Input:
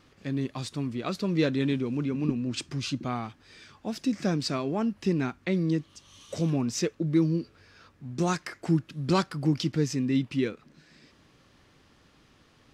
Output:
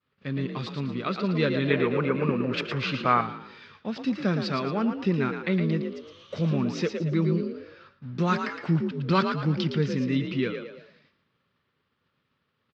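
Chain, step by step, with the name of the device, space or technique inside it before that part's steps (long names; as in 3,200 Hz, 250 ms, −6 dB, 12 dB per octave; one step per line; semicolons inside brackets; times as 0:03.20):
frequency-shifting delay pedal into a guitar cabinet (echo with shifted repeats 113 ms, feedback 40%, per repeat +45 Hz, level −7 dB; loudspeaker in its box 100–4,100 Hz, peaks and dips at 310 Hz −9 dB, 730 Hz −7 dB, 1,300 Hz +4 dB)
downward expander −49 dBFS
0:01.70–0:03.21: flat-topped bell 1,000 Hz +10 dB 2.8 octaves
level +3 dB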